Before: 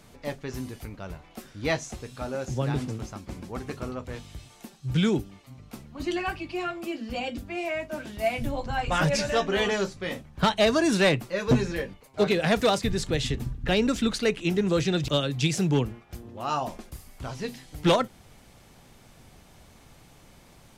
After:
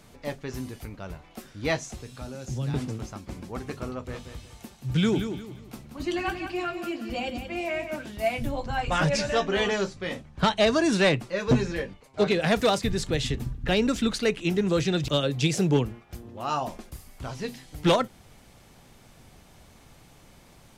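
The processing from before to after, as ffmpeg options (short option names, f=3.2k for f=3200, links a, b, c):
-filter_complex "[0:a]asettb=1/sr,asplit=3[a][b][c];[a]atrim=end=1.804[d];[b]atrim=start=1.8:end=2.74,asetpts=PTS-STARTPTS,afade=t=in:d=0.004:c=qsin,afade=t=out:st=0.936:d=0.004:c=qsin,acrossover=split=240|3000[e][f][g];[f]acompressor=threshold=-42dB:ratio=3:attack=3.2:release=140:knee=2.83:detection=peak[h];[e][h][g]amix=inputs=3:normalize=0[i];[c]atrim=start=2.736[j];[d][i]acrossfade=d=0.004:c1=hsin:c2=qsin[k];[k][j]acrossfade=d=0.004:c1=qsin:c2=hsin,asettb=1/sr,asplit=3[l][m][n];[l]atrim=end=3.894[o];[m]atrim=start=3.89:end=7.96,asetpts=PTS-STARTPTS,afade=t=in:d=0.004:c=qsin,afade=t=out:st=4.066:d=0.004:c=qsin,aecho=1:1:179|358|537|716:0.376|0.124|0.0409|0.0135,atrim=end_sample=179487[p];[n]atrim=start=7.956[q];[o][p]acrossfade=d=0.004:c1=hsin:c2=qsin[r];[r][q]acrossfade=d=0.004:c1=qsin:c2=hsin,asettb=1/sr,asplit=3[s][t][u];[s]atrim=end=8.944[v];[t]atrim=start=8.94:end=12.41,asetpts=PTS-STARTPTS,afade=t=in:d=0.004:c=qsin,afade=t=out:st=3.466:d=0.004:c=qsin,lowpass=9k[w];[u]atrim=start=12.406[x];[v][w]acrossfade=d=0.004:c1=hsin:c2=qsin[y];[y][x]acrossfade=d=0.004:c1=qsin:c2=hsin,asettb=1/sr,asplit=3[z][aa][ab];[z]atrim=end=15.234[ac];[aa]atrim=start=15.23:end=15.77,asetpts=PTS-STARTPTS,afade=t=in:d=0.004:c=qsin,afade=t=out:st=0.536:d=0.004:c=qsin,equalizer=f=490:w=1.5:g=6[ad];[ab]atrim=start=15.766[ae];[ac][ad]acrossfade=d=0.004:c1=hsin:c2=qsin[af];[af][ae]acrossfade=d=0.004:c1=qsin:c2=hsin"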